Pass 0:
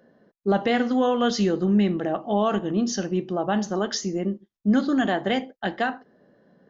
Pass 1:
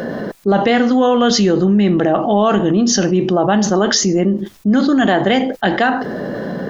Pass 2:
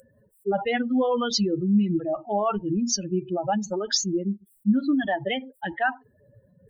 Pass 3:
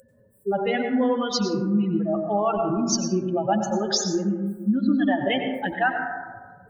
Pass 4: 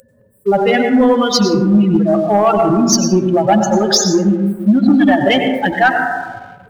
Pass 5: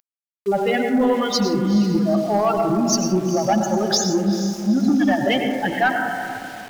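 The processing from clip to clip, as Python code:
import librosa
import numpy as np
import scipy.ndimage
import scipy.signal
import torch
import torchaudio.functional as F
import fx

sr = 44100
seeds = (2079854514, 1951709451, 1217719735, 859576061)

y1 = fx.env_flatten(x, sr, amount_pct=70)
y1 = F.gain(torch.from_numpy(y1), 5.0).numpy()
y2 = fx.bin_expand(y1, sr, power=3.0)
y2 = y2 * (1.0 - 0.35 / 2.0 + 0.35 / 2.0 * np.cos(2.0 * np.pi * 5.1 * (np.arange(len(y2)) / sr)))
y2 = F.gain(torch.from_numpy(y2), -3.0).numpy()
y3 = fx.rider(y2, sr, range_db=4, speed_s=0.5)
y3 = fx.rev_plate(y3, sr, seeds[0], rt60_s=1.4, hf_ratio=0.25, predelay_ms=80, drr_db=4.0)
y4 = fx.leveller(y3, sr, passes=1)
y4 = F.gain(torch.from_numpy(y4), 8.0).numpy()
y5 = fx.echo_diffused(y4, sr, ms=450, feedback_pct=41, wet_db=-11)
y5 = np.where(np.abs(y5) >= 10.0 ** (-28.5 / 20.0), y5, 0.0)
y5 = F.gain(torch.from_numpy(y5), -7.0).numpy()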